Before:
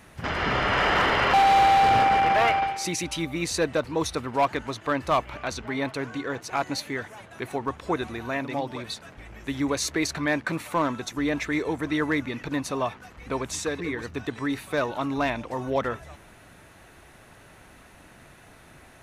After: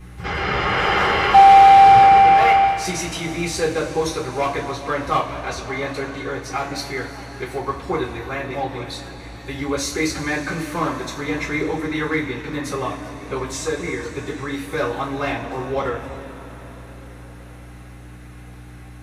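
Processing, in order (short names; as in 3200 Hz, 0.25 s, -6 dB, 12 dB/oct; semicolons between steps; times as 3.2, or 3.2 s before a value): hum 60 Hz, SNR 14 dB; two-slope reverb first 0.28 s, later 5 s, from -20 dB, DRR -9.5 dB; gain -6 dB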